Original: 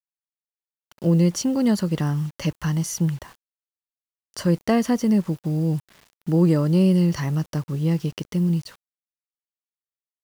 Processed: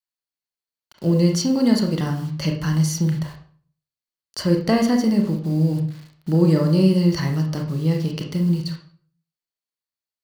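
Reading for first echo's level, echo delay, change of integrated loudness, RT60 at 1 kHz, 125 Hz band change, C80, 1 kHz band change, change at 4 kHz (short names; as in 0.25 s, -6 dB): none, none, +2.0 dB, 0.45 s, +2.0 dB, 11.5 dB, +1.5 dB, +5.5 dB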